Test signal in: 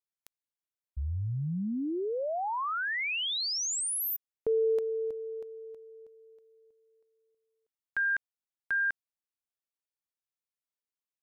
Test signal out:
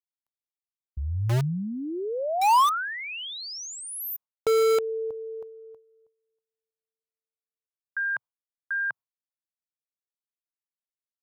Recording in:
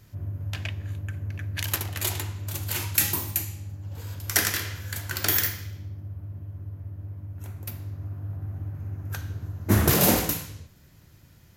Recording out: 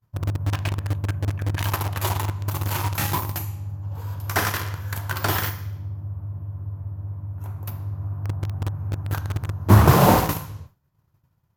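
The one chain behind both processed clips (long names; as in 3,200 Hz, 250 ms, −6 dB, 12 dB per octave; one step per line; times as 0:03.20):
downward expander −41 dBFS, range −33 dB
octave-band graphic EQ 125/250/1,000/2,000/4,000/8,000 Hz +7/−3/+11/−5/−4/−7 dB
in parallel at −6.5 dB: bit reduction 4 bits
on the sum: slew-rate limiting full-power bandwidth 410 Hz
level +1 dB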